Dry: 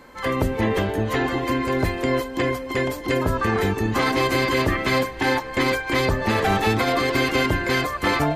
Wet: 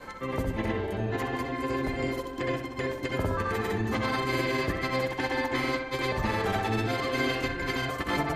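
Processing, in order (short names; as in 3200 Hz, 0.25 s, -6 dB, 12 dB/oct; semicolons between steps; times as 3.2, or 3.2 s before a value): grains, pitch spread up and down by 0 st; upward compressor, threshold -27 dBFS; on a send: darkening echo 63 ms, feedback 56%, low-pass 3400 Hz, level -6.5 dB; on the sum: gain -7.5 dB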